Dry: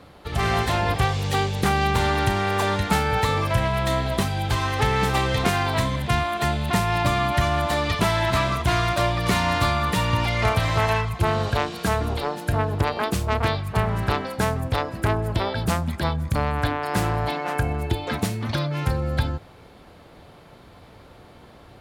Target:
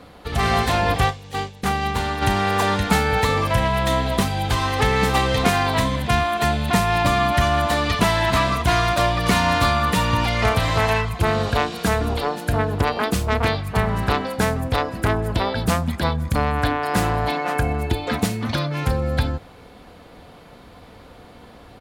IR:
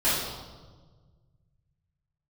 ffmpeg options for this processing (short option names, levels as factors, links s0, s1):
-filter_complex "[0:a]aecho=1:1:4.1:0.31,asplit=3[s0][s1][s2];[s0]afade=t=out:st=1.09:d=0.02[s3];[s1]agate=range=0.0224:threshold=0.178:ratio=3:detection=peak,afade=t=in:st=1.09:d=0.02,afade=t=out:st=2.21:d=0.02[s4];[s2]afade=t=in:st=2.21:d=0.02[s5];[s3][s4][s5]amix=inputs=3:normalize=0,volume=1.41"